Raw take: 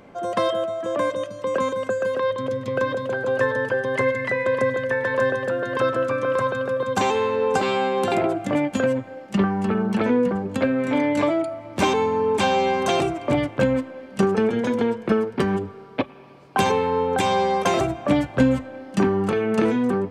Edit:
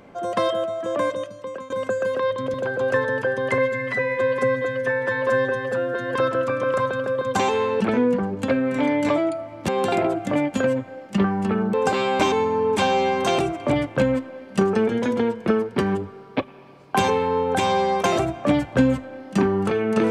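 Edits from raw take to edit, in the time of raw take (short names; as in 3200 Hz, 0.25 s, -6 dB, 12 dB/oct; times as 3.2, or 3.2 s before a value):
1.09–1.7 fade out, to -20.5 dB
2.54–3.01 cut
4.05–5.76 stretch 1.5×
7.42–7.88 swap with 9.93–11.81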